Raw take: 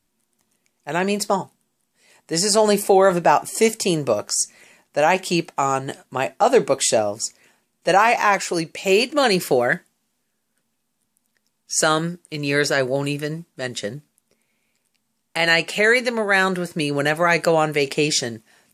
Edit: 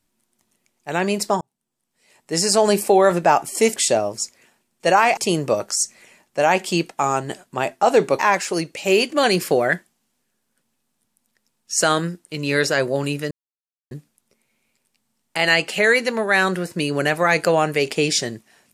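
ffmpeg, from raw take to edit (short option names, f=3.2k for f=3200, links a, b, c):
-filter_complex "[0:a]asplit=7[a][b][c][d][e][f][g];[a]atrim=end=1.41,asetpts=PTS-STARTPTS,afade=t=out:st=1.406:d=0.004:c=hsin[h];[b]atrim=start=1.41:end=3.762,asetpts=PTS-STARTPTS,afade=t=in:d=0.92[i];[c]atrim=start=6.778:end=8.192[j];[d]atrim=start=3.758:end=6.782[k];[e]atrim=start=8.188:end=13.31,asetpts=PTS-STARTPTS,afade=t=out:st=5.118:d=0.004:c=hsin[l];[f]atrim=start=13.31:end=13.91,asetpts=PTS-STARTPTS,volume=0[m];[g]atrim=start=13.91,asetpts=PTS-STARTPTS,afade=t=in:d=0.004:c=hsin[n];[h][i]concat=n=2:v=0:a=1[o];[o][j]acrossfade=d=0.004:c1=hsin:c2=hsin[p];[p][k]acrossfade=d=0.004:c1=hsin:c2=hsin[q];[l][m][n]concat=n=3:v=0:a=1[r];[q][r]acrossfade=d=0.004:c1=hsin:c2=hsin"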